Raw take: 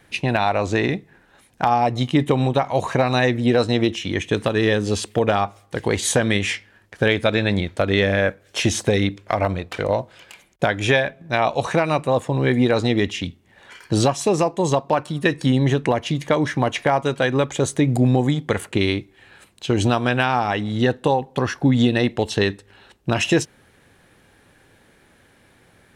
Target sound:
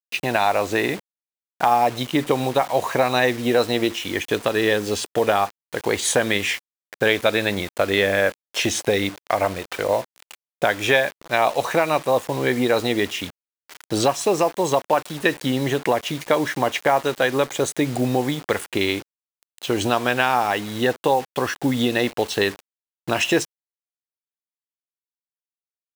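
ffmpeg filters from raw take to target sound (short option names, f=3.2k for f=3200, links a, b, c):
-af "acrusher=bits=5:mix=0:aa=0.000001,bass=f=250:g=-11,treble=f=4k:g=-1,volume=1dB"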